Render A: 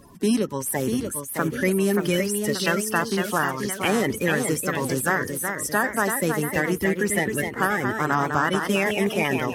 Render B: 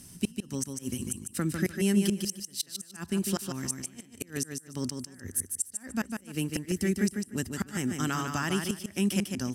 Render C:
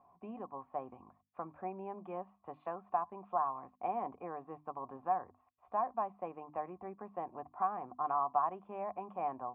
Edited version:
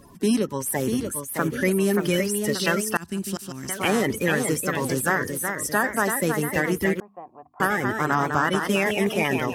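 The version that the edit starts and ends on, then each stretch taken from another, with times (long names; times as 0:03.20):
A
0:02.97–0:03.69: punch in from B
0:07.00–0:07.60: punch in from C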